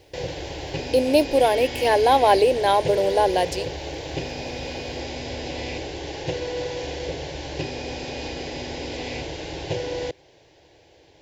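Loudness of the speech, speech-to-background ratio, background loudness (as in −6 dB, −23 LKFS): −19.5 LKFS, 11.5 dB, −31.0 LKFS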